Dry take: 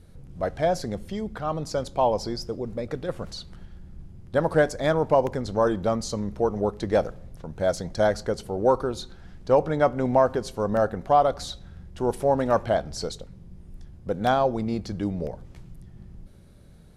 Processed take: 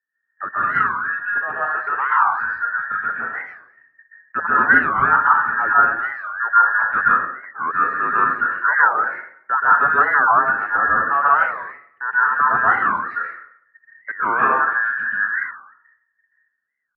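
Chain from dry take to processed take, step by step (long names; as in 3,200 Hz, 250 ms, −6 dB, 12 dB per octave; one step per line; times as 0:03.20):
frequency inversion band by band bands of 2,000 Hz
noise gate −36 dBFS, range −34 dB
0:05.73–0:06.38: parametric band 600 Hz −14.5 dB 2.6 octaves
dense smooth reverb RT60 0.66 s, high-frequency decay 0.7×, pre-delay 115 ms, DRR −6.5 dB
single-sideband voice off tune −120 Hz 210–2,500 Hz
wow of a warped record 45 rpm, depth 250 cents
level −1.5 dB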